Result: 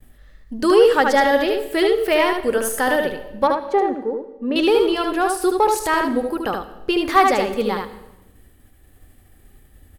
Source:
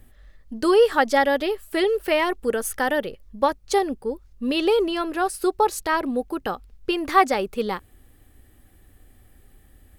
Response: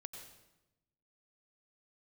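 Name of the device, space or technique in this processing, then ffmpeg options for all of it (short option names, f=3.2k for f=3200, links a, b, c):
saturated reverb return: -filter_complex "[0:a]agate=range=-33dB:threshold=-48dB:ratio=3:detection=peak,asettb=1/sr,asplit=3[a][b][c];[a]atrim=end=3.474[d];[b]atrim=start=3.47:end=4.56,asetpts=PTS-STARTPTS,afade=t=in:d=0.004:c=qsin,afade=t=out:st=1.086:d=0.004:c=qsin,acrossover=split=190 2100:gain=0.141 1 0.0631[e][f][g];[e][f][g]amix=inputs=3:normalize=0[h];[c]atrim=start=4.556[i];[d][h]acrossfade=d=0.004:c1=hsin:c2=qsin[j];[j][i]acrossfade=d=0.004:c1=qsin:c2=hsin,asplit=2[k][l];[1:a]atrim=start_sample=2205[m];[l][m]afir=irnorm=-1:irlink=0,asoftclip=type=tanh:threshold=-20dB,volume=-1dB[n];[k][n]amix=inputs=2:normalize=0,aecho=1:1:75:0.631"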